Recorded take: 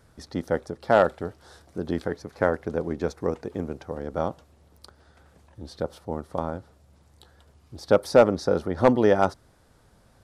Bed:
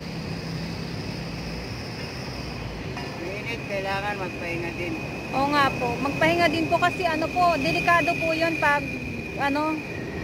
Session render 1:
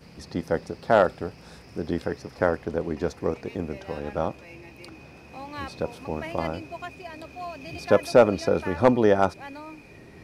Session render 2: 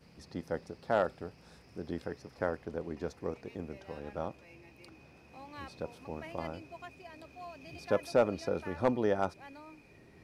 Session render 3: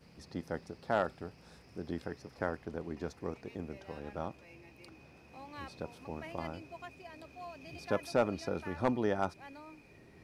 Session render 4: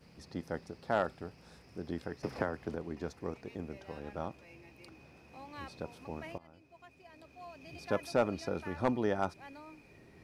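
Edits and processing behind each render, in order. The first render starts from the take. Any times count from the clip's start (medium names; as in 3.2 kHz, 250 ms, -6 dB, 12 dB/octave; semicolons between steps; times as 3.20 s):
add bed -16 dB
trim -10.5 dB
dynamic bell 510 Hz, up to -5 dB, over -45 dBFS, Q 2.5
2.23–2.75 s: three bands compressed up and down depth 100%; 6.38–7.95 s: fade in, from -23 dB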